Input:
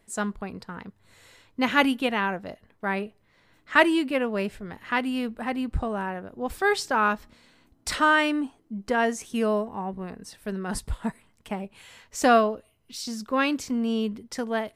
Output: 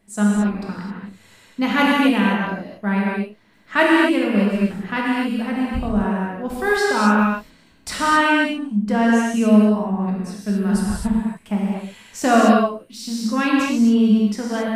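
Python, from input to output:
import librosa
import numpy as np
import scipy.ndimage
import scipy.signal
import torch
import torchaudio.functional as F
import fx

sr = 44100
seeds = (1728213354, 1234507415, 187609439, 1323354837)

y = fx.peak_eq(x, sr, hz=210.0, db=11.5, octaves=0.41)
y = fx.rev_gated(y, sr, seeds[0], gate_ms=290, shape='flat', drr_db=-4.5)
y = F.gain(torch.from_numpy(y), -1.0).numpy()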